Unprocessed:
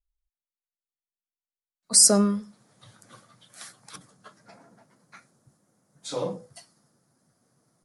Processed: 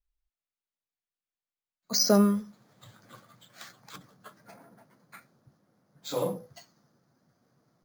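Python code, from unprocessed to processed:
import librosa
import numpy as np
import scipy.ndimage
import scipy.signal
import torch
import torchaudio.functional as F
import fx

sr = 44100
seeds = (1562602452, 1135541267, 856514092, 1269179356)

y = np.repeat(scipy.signal.resample_poly(x, 1, 4), 4)[:len(x)]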